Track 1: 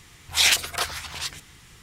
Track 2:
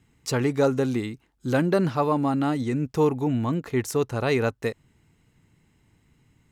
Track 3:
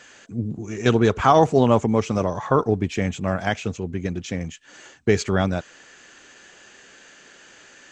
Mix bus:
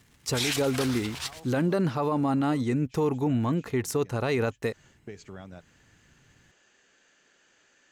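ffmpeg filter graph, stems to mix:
ffmpeg -i stem1.wav -i stem2.wav -i stem3.wav -filter_complex "[0:a]aeval=exprs='sgn(val(0))*max(abs(val(0))-0.00422,0)':channel_layout=same,volume=-3dB,asplit=2[link_01][link_02];[link_02]volume=-17.5dB[link_03];[1:a]volume=-0.5dB[link_04];[2:a]acompressor=threshold=-24dB:ratio=4,volume=-15.5dB,afade=type=in:start_time=4.57:duration=0.33:silence=0.398107[link_05];[link_03]aecho=0:1:116|232|348|464|580|696|812:1|0.48|0.23|0.111|0.0531|0.0255|0.0122[link_06];[link_01][link_04][link_05][link_06]amix=inputs=4:normalize=0,alimiter=limit=-17.5dB:level=0:latency=1:release=37" out.wav

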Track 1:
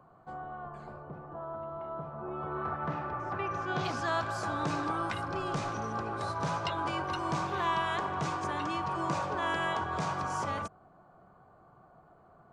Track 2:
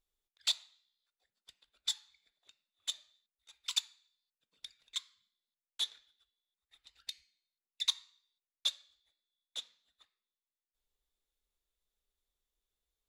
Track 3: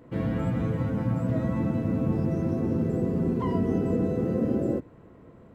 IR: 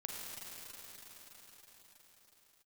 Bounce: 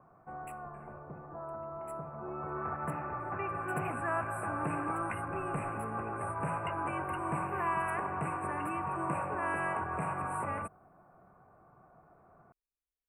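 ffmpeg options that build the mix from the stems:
-filter_complex "[0:a]volume=-2dB[link_01];[1:a]volume=-11dB[link_02];[link_01][link_02]amix=inputs=2:normalize=0,asuperstop=centerf=4800:order=20:qfactor=0.89,adynamicequalizer=threshold=0.00178:dfrequency=4600:dqfactor=0.7:tfrequency=4600:tqfactor=0.7:attack=5:release=100:ratio=0.375:range=3.5:mode=boostabove:tftype=highshelf"

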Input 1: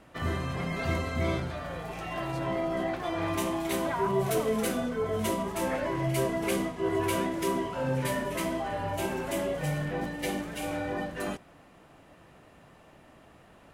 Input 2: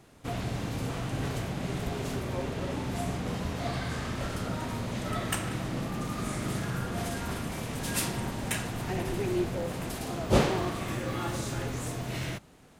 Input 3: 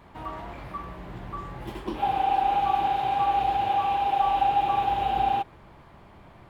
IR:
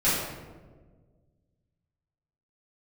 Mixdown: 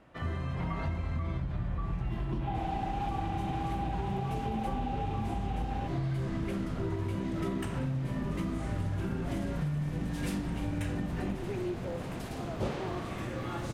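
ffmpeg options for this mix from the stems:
-filter_complex "[0:a]highshelf=frequency=10000:gain=-5,volume=-4dB[link_01];[1:a]adelay=2300,volume=-3.5dB[link_02];[2:a]adelay=450,volume=0dB[link_03];[link_01][link_03]amix=inputs=2:normalize=0,asubboost=boost=9.5:cutoff=200,alimiter=limit=-18.5dB:level=0:latency=1:release=256,volume=0dB[link_04];[link_02][link_04]amix=inputs=2:normalize=0,aemphasis=mode=reproduction:type=cd,acompressor=threshold=-30dB:ratio=5"

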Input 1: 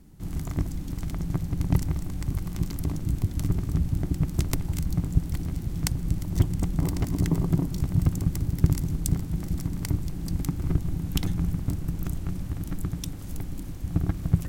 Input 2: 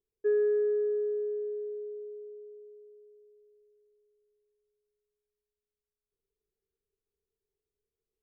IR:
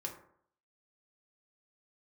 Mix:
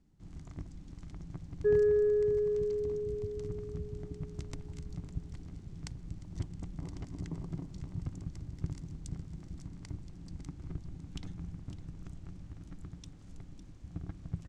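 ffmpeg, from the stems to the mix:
-filter_complex "[0:a]lowpass=frequency=7500:width=0.5412,lowpass=frequency=7500:width=1.3066,volume=-16dB,asplit=2[link_01][link_02];[link_02]volume=-12.5dB[link_03];[1:a]adelay=1400,volume=0.5dB[link_04];[link_03]aecho=0:1:555:1[link_05];[link_01][link_04][link_05]amix=inputs=3:normalize=0"

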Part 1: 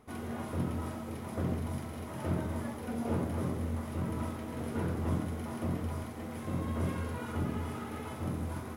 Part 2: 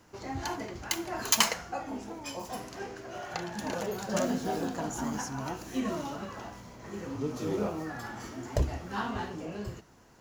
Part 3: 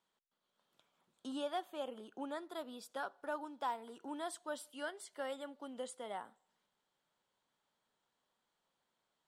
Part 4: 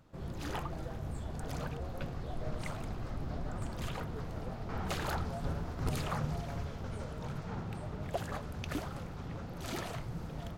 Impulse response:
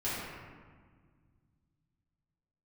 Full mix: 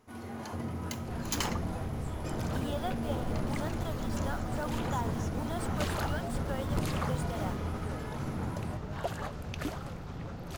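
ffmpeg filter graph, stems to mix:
-filter_complex "[0:a]volume=-7.5dB,asplit=2[link_01][link_02];[link_02]volume=-5.5dB[link_03];[1:a]highpass=610,volume=-10.5dB[link_04];[2:a]acrusher=bits=8:mix=0:aa=0.000001,adelay=1300,volume=2dB[link_05];[3:a]adelay=900,volume=1.5dB[link_06];[4:a]atrim=start_sample=2205[link_07];[link_03][link_07]afir=irnorm=-1:irlink=0[link_08];[link_01][link_04][link_05][link_06][link_08]amix=inputs=5:normalize=0"

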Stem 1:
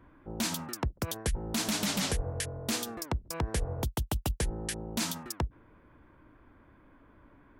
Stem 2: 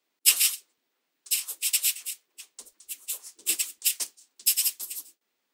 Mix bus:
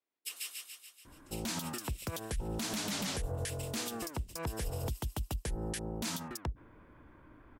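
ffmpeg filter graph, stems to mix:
ffmpeg -i stem1.wav -i stem2.wav -filter_complex "[0:a]adelay=1050,volume=1dB[link_01];[1:a]highshelf=frequency=2700:gain=-11,volume=-11.5dB,asplit=2[link_02][link_03];[link_03]volume=-4dB,aecho=0:1:143|286|429|572|715|858|1001|1144|1287:1|0.57|0.325|0.185|0.106|0.0602|0.0343|0.0195|0.0111[link_04];[link_01][link_02][link_04]amix=inputs=3:normalize=0,alimiter=level_in=3.5dB:limit=-24dB:level=0:latency=1:release=92,volume=-3.5dB" out.wav

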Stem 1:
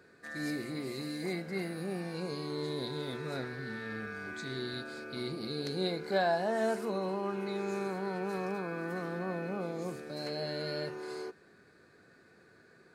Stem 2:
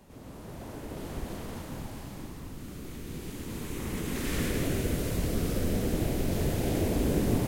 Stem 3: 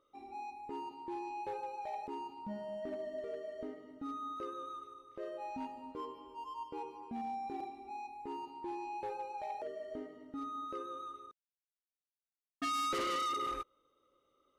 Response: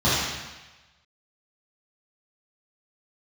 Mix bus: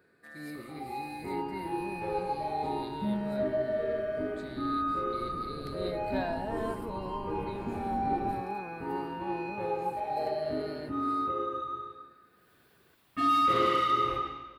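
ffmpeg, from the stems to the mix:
-filter_complex "[0:a]highshelf=frequency=5100:gain=7,volume=-6dB[link_01];[1:a]lowpass=1200,adelay=950,volume=-14dB[link_02];[2:a]acompressor=mode=upward:threshold=-47dB:ratio=2.5,adelay=550,volume=1.5dB,asplit=2[link_03][link_04];[link_04]volume=-13dB[link_05];[3:a]atrim=start_sample=2205[link_06];[link_05][link_06]afir=irnorm=-1:irlink=0[link_07];[link_01][link_02][link_03][link_07]amix=inputs=4:normalize=0,equalizer=frequency=6300:width=1.5:gain=-14"

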